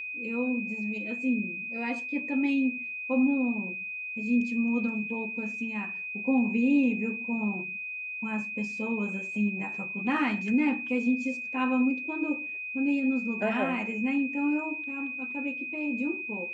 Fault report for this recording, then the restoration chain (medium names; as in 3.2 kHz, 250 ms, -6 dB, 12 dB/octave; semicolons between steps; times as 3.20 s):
whine 2.5 kHz -34 dBFS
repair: band-stop 2.5 kHz, Q 30